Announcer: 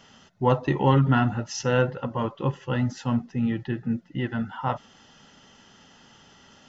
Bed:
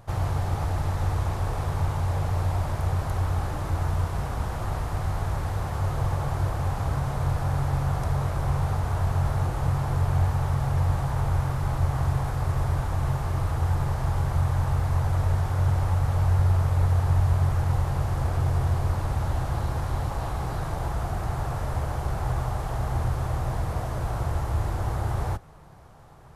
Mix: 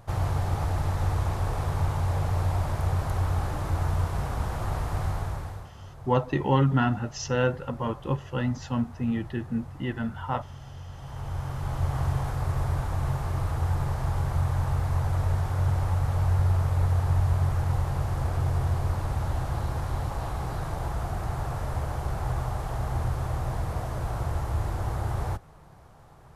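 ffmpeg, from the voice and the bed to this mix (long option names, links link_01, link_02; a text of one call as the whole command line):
ffmpeg -i stem1.wav -i stem2.wav -filter_complex "[0:a]adelay=5650,volume=-2.5dB[link_01];[1:a]volume=15.5dB,afade=type=out:start_time=5.04:duration=0.67:silence=0.133352,afade=type=in:start_time=10.93:duration=1.04:silence=0.158489[link_02];[link_01][link_02]amix=inputs=2:normalize=0" out.wav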